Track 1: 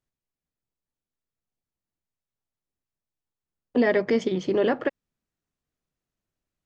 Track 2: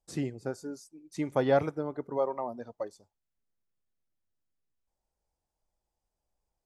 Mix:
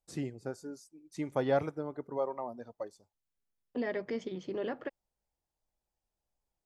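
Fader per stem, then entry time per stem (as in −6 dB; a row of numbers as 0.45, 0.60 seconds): −13.5, −4.0 decibels; 0.00, 0.00 seconds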